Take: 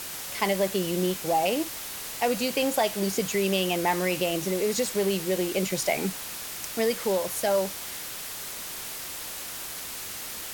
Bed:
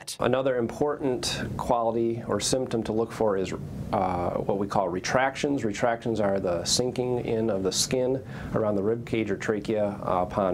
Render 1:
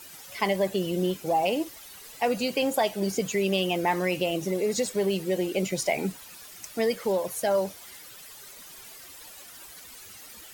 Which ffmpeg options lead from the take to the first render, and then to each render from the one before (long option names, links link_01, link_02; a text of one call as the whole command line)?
ffmpeg -i in.wav -af "afftdn=noise_reduction=13:noise_floor=-37" out.wav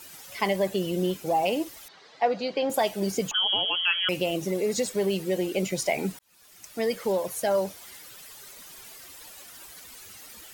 ffmpeg -i in.wav -filter_complex "[0:a]asettb=1/sr,asplit=3[link_01][link_02][link_03];[link_01]atrim=end=1.884[link_04];[link_02]atrim=start=1.88:end=2.7,asetpts=PTS-STARTPTS,afade=type=in:duration=0.004:curve=qsin,afade=type=out:start_time=0.816:duration=0.004:curve=qsin,highpass=190,equalizer=frequency=240:width_type=q:width=4:gain=-5,equalizer=frequency=700:width_type=q:width=4:gain=4,equalizer=frequency=2700:width_type=q:width=4:gain=-8,lowpass=frequency=4500:width=0.5412,lowpass=frequency=4500:width=1.3066[link_05];[link_03]atrim=start=2.696[link_06];[link_04][link_05]acrossfade=duration=0.004:curve1=hsin:curve2=qsin[link_07];[link_07][link_06]acrossfade=duration=0.004:curve1=qsin:curve2=hsin,asettb=1/sr,asplit=3[link_08][link_09][link_10];[link_08]atrim=end=3.314[link_11];[link_09]atrim=start=3.31:end=4.09,asetpts=PTS-STARTPTS,afade=type=in:duration=0.004:curve=qsin,afade=type=out:start_time=0.776:duration=0.004:curve=qsin,lowpass=frequency=3000:width_type=q:width=0.5098,lowpass=frequency=3000:width_type=q:width=0.6013,lowpass=frequency=3000:width_type=q:width=0.9,lowpass=frequency=3000:width_type=q:width=2.563,afreqshift=-3500[link_12];[link_10]atrim=start=4.086[link_13];[link_11][link_12]acrossfade=duration=0.004:curve1=hsin:curve2=qsin[link_14];[link_14][link_13]acrossfade=duration=0.004:curve1=qsin:curve2=hsin,asplit=2[link_15][link_16];[link_15]atrim=end=6.19,asetpts=PTS-STARTPTS,afade=type=out:start_time=6.186:duration=0.004:curve=hsin[link_17];[link_16]atrim=start=6.19,asetpts=PTS-STARTPTS,afade=type=in:duration=0.79[link_18];[link_17][link_18]concat=n=2:v=0:a=1" out.wav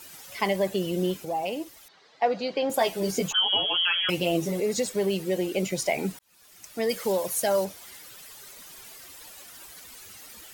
ffmpeg -i in.wav -filter_complex "[0:a]asettb=1/sr,asplit=3[link_01][link_02][link_03];[link_01]atrim=end=2.794[link_04];[link_02]atrim=start=2.79:end=4.6,asetpts=PTS-STARTPTS,afade=type=in:duration=0.004:curve=qsin,afade=type=out:start_time=1.806:duration=0.004:curve=qsin,asplit=2[link_05][link_06];[link_06]adelay=12,volume=-2.5dB[link_07];[link_05][link_07]amix=inputs=2:normalize=0,atrim=end_sample=79821[link_08];[link_03]atrim=start=4.596[link_09];[link_04][link_08]acrossfade=duration=0.004:curve1=hsin:curve2=qsin[link_10];[link_10][link_09]acrossfade=duration=0.004:curve1=qsin:curve2=hsin,asettb=1/sr,asplit=3[link_11][link_12][link_13];[link_11]atrim=end=6.894[link_14];[link_12]atrim=start=6.89:end=7.65,asetpts=PTS-STARTPTS,afade=type=in:duration=0.004:curve=qsin,afade=type=out:start_time=0.756:duration=0.004:curve=qsin,highshelf=frequency=3600:gain=7[link_15];[link_13]atrim=start=7.646[link_16];[link_14][link_15]acrossfade=duration=0.004:curve1=hsin:curve2=qsin[link_17];[link_17][link_16]acrossfade=duration=0.004:curve1=qsin:curve2=hsin,asplit=3[link_18][link_19][link_20];[link_18]atrim=end=1.252[link_21];[link_19]atrim=start=1.248:end=2.222,asetpts=PTS-STARTPTS,volume=-5dB[link_22];[link_20]atrim=start=2.218[link_23];[link_21][link_22]acrossfade=duration=0.004:curve1=hsin:curve2=hsin[link_24];[link_24][link_23]acrossfade=duration=0.004:curve1=hsin:curve2=hsin" out.wav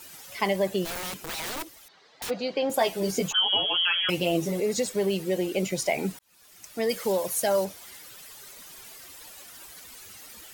ffmpeg -i in.wav -filter_complex "[0:a]asplit=3[link_01][link_02][link_03];[link_01]afade=type=out:start_time=0.84:duration=0.02[link_04];[link_02]aeval=exprs='(mod(28.2*val(0)+1,2)-1)/28.2':channel_layout=same,afade=type=in:start_time=0.84:duration=0.02,afade=type=out:start_time=2.29:duration=0.02[link_05];[link_03]afade=type=in:start_time=2.29:duration=0.02[link_06];[link_04][link_05][link_06]amix=inputs=3:normalize=0" out.wav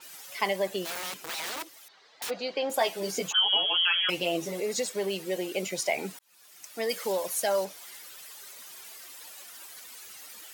ffmpeg -i in.wav -af "highpass=frequency=560:poles=1,adynamicequalizer=threshold=0.00631:dfrequency=7800:dqfactor=0.7:tfrequency=7800:tqfactor=0.7:attack=5:release=100:ratio=0.375:range=2.5:mode=cutabove:tftype=highshelf" out.wav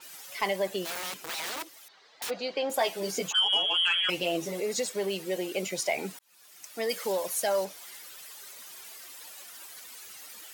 ffmpeg -i in.wav -af "asoftclip=type=tanh:threshold=-15dB" out.wav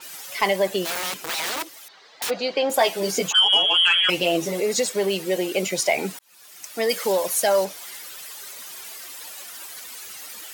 ffmpeg -i in.wav -af "volume=8dB" out.wav